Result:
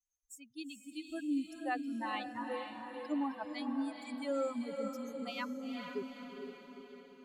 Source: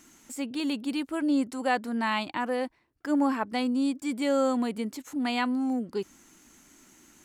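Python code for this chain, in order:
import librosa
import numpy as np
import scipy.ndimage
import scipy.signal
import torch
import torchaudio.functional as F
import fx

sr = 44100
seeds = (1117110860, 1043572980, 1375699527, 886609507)

p1 = fx.bin_expand(x, sr, power=3.0)
p2 = p1 + fx.echo_diffused(p1, sr, ms=455, feedback_pct=54, wet_db=-5.0, dry=0)
y = p2 * librosa.db_to_amplitude(-6.5)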